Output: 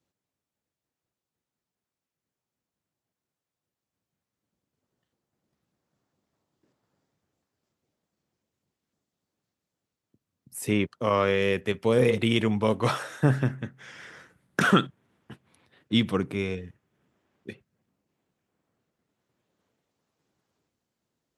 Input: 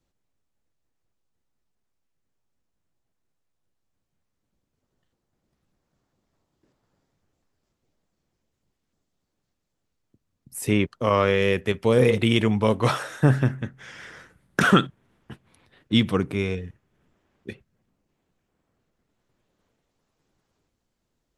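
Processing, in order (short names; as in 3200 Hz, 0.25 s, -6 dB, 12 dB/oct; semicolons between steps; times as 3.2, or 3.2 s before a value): HPF 100 Hz; gain -3 dB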